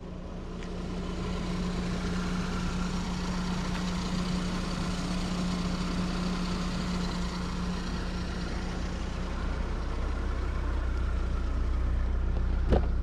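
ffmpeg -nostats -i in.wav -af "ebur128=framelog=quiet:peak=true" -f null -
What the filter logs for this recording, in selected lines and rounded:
Integrated loudness:
  I:         -32.8 LUFS
  Threshold: -42.8 LUFS
Loudness range:
  LRA:         2.5 LU
  Threshold: -52.8 LUFS
  LRA low:   -34.4 LUFS
  LRA high:  -31.8 LUFS
True peak:
  Peak:      -12.3 dBFS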